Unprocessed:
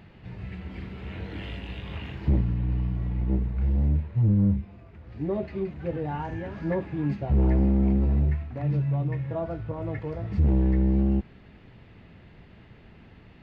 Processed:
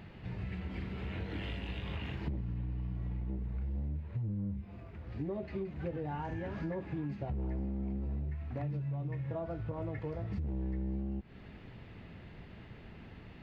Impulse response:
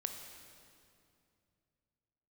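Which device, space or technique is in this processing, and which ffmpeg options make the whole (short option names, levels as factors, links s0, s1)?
serial compression, leveller first: -af "acompressor=threshold=0.0562:ratio=3,acompressor=threshold=0.0178:ratio=5"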